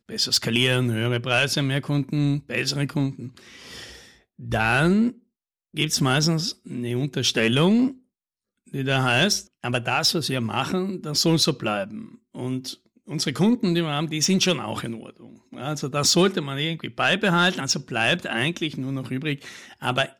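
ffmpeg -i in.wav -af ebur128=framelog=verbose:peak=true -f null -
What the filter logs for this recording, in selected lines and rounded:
Integrated loudness:
  I:         -22.7 LUFS
  Threshold: -33.4 LUFS
Loudness range:
  LRA:         3.1 LU
  Threshold: -43.5 LUFS
  LRA low:   -25.3 LUFS
  LRA high:  -22.2 LUFS
True peak:
  Peak:       -9.8 dBFS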